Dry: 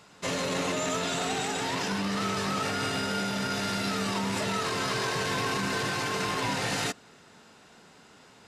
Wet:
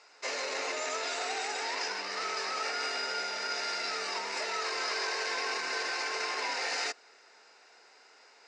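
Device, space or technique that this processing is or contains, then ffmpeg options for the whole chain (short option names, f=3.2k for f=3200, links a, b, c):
phone speaker on a table: -af "highpass=f=440:w=0.5412,highpass=f=440:w=1.3066,equalizer=f=580:t=q:w=4:g=-4,equalizer=f=1.1k:t=q:w=4:g=-4,equalizer=f=2.2k:t=q:w=4:g=4,equalizer=f=3.3k:t=q:w=4:g=-9,equalizer=f=5k:t=q:w=4:g=6,lowpass=f=6.9k:w=0.5412,lowpass=f=6.9k:w=1.3066,volume=-2dB"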